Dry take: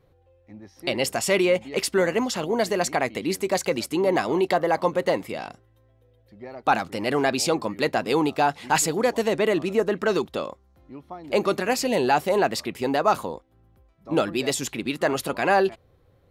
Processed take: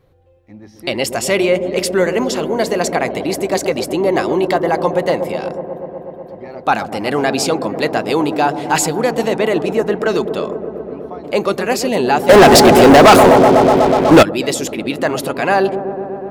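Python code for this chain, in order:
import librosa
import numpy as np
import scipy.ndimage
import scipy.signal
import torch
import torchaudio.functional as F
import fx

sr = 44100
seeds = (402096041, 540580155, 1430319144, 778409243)

y = fx.echo_wet_lowpass(x, sr, ms=123, feedback_pct=85, hz=700.0, wet_db=-8.5)
y = fx.leveller(y, sr, passes=5, at=(12.29, 14.23))
y = y * 10.0 ** (5.5 / 20.0)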